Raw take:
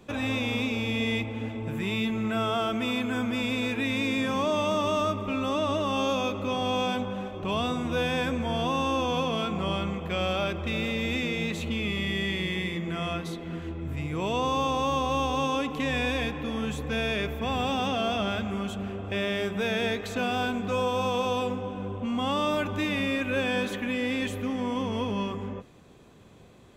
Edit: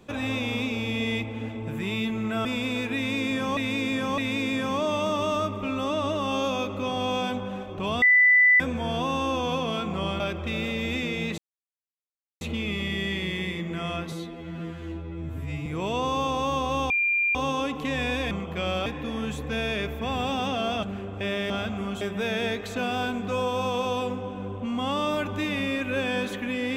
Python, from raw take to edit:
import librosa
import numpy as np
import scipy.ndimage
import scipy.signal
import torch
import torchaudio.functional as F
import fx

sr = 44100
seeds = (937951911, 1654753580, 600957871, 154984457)

y = fx.edit(x, sr, fx.cut(start_s=2.45, length_s=0.87),
    fx.repeat(start_s=3.83, length_s=0.61, count=3),
    fx.bleep(start_s=7.67, length_s=0.58, hz=1990.0, db=-14.0),
    fx.move(start_s=9.85, length_s=0.55, to_s=16.26),
    fx.insert_silence(at_s=11.58, length_s=1.03),
    fx.stretch_span(start_s=13.29, length_s=0.77, factor=2.0),
    fx.insert_tone(at_s=15.3, length_s=0.45, hz=2390.0, db=-20.5),
    fx.move(start_s=18.23, length_s=0.51, to_s=19.41), tone=tone)